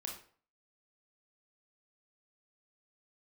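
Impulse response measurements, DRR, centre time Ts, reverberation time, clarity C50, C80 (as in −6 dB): 0.0 dB, 28 ms, 0.45 s, 5.5 dB, 11.0 dB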